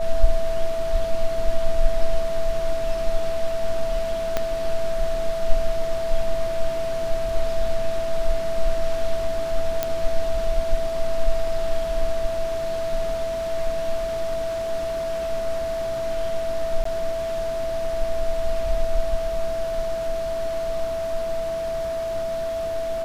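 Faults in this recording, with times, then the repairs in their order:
whistle 660 Hz −24 dBFS
0:04.37: click −8 dBFS
0:09.83: click −7 dBFS
0:16.84–0:16.85: drop-out 14 ms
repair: click removal
notch filter 660 Hz, Q 30
repair the gap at 0:16.84, 14 ms

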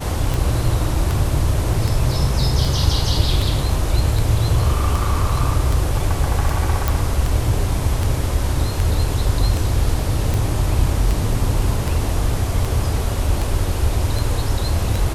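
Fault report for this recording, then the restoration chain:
scratch tick 78 rpm
0:06.88: click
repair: click removal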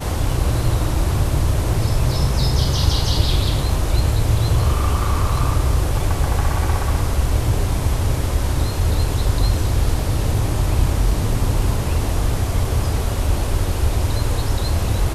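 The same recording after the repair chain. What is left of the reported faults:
none of them is left

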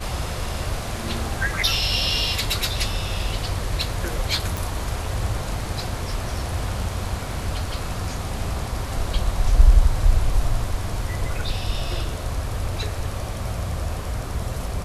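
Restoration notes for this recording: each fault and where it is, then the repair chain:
0:04.57: click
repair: click removal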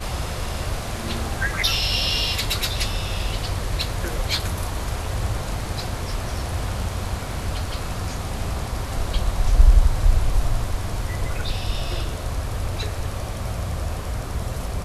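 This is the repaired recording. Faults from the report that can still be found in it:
none of them is left

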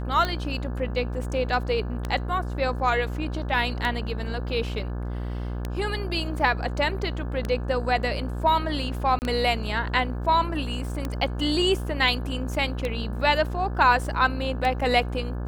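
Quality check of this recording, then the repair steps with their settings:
mains buzz 60 Hz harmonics 29 −30 dBFS
scratch tick 33 1/3 rpm −14 dBFS
0:09.19–0:09.22: drop-out 29 ms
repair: click removal
hum removal 60 Hz, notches 29
repair the gap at 0:09.19, 29 ms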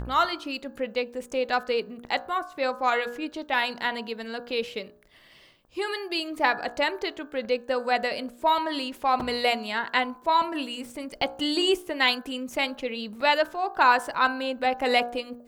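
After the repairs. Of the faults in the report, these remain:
none of them is left

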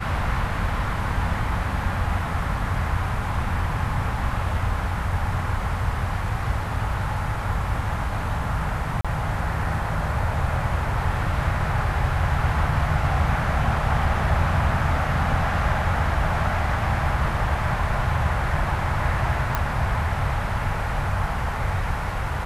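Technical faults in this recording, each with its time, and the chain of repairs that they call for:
0:09.01–0:09.05: drop-out 36 ms
0:19.55: click −9 dBFS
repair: click removal
repair the gap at 0:09.01, 36 ms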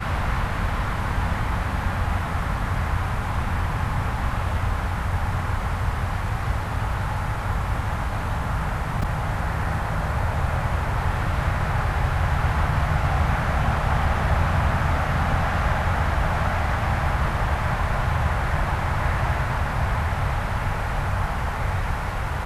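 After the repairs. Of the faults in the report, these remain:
none of them is left

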